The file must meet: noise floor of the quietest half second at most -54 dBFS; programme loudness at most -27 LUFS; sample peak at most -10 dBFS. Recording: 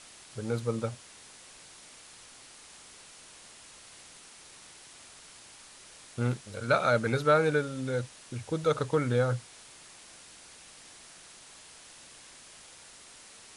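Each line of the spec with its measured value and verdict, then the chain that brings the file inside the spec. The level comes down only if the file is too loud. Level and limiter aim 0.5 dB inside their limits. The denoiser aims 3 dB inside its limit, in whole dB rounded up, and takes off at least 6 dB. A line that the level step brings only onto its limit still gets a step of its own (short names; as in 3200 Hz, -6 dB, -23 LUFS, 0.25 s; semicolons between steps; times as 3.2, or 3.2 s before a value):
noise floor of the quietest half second -52 dBFS: fail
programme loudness -29.5 LUFS: OK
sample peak -12.0 dBFS: OK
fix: denoiser 6 dB, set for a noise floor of -52 dBFS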